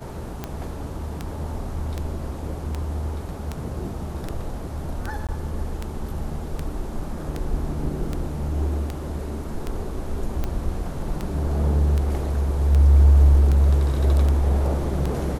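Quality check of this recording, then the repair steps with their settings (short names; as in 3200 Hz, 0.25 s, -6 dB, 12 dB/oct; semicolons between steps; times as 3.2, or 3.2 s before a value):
tick 78 rpm -14 dBFS
5.27–5.29 gap 17 ms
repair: de-click; interpolate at 5.27, 17 ms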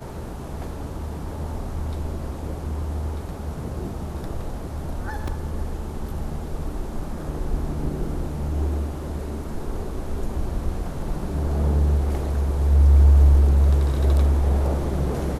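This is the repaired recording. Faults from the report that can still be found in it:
none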